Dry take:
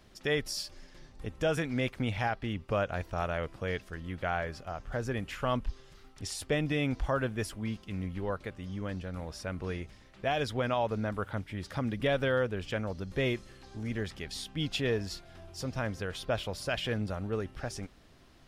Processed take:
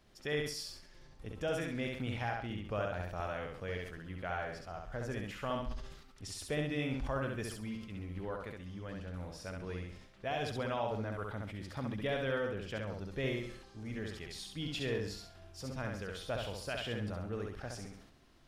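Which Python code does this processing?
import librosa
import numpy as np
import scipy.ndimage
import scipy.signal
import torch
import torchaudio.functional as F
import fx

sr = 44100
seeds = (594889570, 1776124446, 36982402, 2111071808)

p1 = x + fx.echo_feedback(x, sr, ms=67, feedback_pct=35, wet_db=-3.5, dry=0)
p2 = fx.sustainer(p1, sr, db_per_s=69.0)
y = F.gain(torch.from_numpy(p2), -7.5).numpy()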